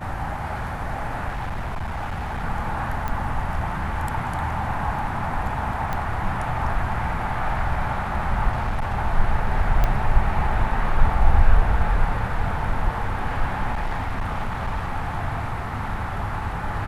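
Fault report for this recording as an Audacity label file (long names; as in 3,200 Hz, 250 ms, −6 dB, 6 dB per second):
1.280000	2.450000	clipping −24.5 dBFS
3.080000	3.080000	click −15 dBFS
5.930000	5.930000	click −13 dBFS
8.520000	8.980000	clipping −20 dBFS
9.840000	9.840000	click −9 dBFS
13.720000	14.930000	clipping −21 dBFS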